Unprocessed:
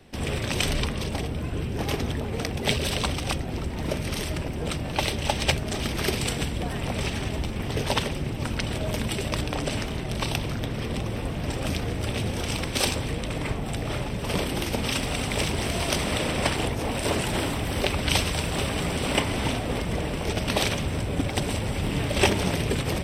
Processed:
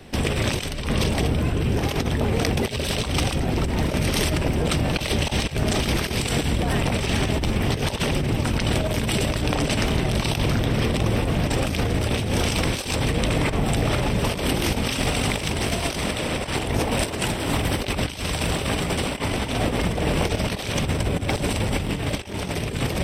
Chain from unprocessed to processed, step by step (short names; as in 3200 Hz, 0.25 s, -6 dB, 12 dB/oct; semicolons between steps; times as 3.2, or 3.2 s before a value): negative-ratio compressor -29 dBFS, ratio -0.5; gain +6.5 dB